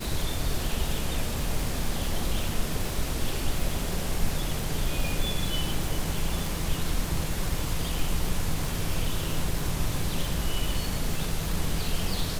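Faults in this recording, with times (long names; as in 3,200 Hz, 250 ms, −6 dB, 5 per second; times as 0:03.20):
surface crackle 300 per second −30 dBFS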